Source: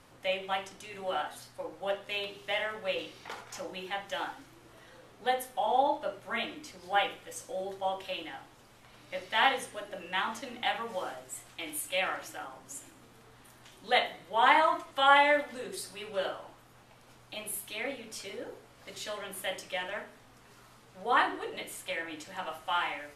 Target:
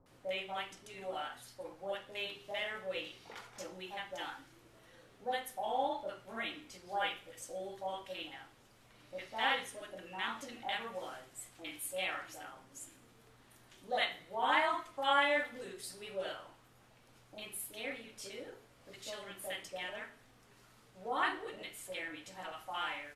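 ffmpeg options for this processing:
-filter_complex "[0:a]acrossover=split=930[a][b];[b]adelay=60[c];[a][c]amix=inputs=2:normalize=0,volume=-5.5dB"

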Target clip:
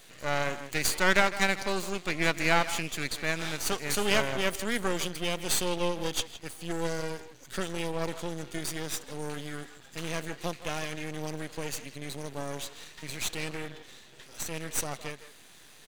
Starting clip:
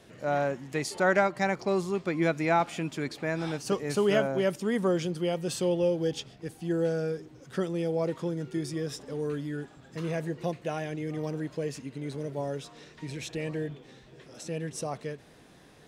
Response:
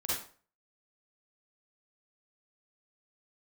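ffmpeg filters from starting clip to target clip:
-filter_complex "[0:a]asuperstop=centerf=5300:order=4:qfactor=7.4,tiltshelf=f=1.4k:g=-9,asplit=2[a][b];[b]adelay=160,highpass=300,lowpass=3.4k,asoftclip=type=hard:threshold=-21dB,volume=-11dB[c];[a][c]amix=inputs=2:normalize=0,aeval=exprs='max(val(0),0)':c=same,volume=6dB"

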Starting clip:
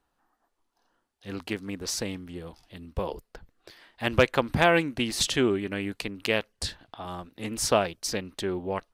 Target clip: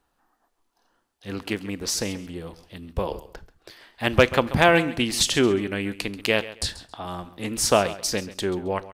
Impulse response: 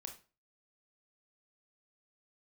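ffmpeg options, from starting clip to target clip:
-filter_complex "[0:a]aecho=1:1:135|270:0.158|0.0365,asplit=2[a][b];[1:a]atrim=start_sample=2205,highshelf=f=4.2k:g=9.5[c];[b][c]afir=irnorm=-1:irlink=0,volume=-10dB[d];[a][d]amix=inputs=2:normalize=0,volume=2.5dB"

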